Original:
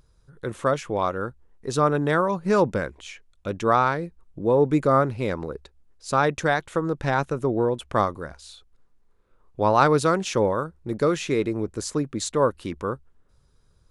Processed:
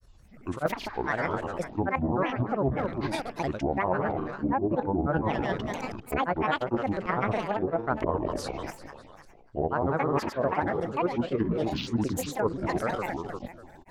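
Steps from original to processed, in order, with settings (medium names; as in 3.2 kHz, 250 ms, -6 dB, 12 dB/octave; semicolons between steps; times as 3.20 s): backward echo that repeats 141 ms, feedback 64%, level -8 dB; in parallel at +2 dB: level held to a coarse grid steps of 21 dB; on the sum: low-pass that closes with the level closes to 1.1 kHz, closed at -13 dBFS; granulator, grains 20 per s, pitch spread up and down by 12 st; reverse; compression 6:1, threshold -24 dBFS, peak gain reduction 13 dB; reverse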